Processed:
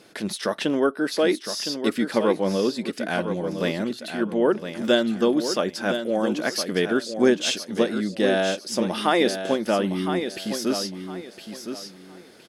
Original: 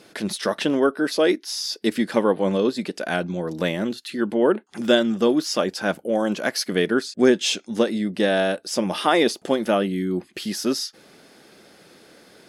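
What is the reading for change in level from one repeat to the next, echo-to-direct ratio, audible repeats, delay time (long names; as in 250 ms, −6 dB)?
−12.0 dB, −8.0 dB, 3, 1,012 ms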